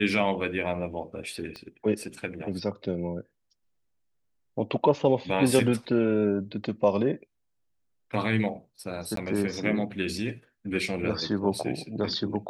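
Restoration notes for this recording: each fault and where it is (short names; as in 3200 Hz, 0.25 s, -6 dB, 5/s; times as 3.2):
1.56 pop -26 dBFS
9.16–9.17 gap 13 ms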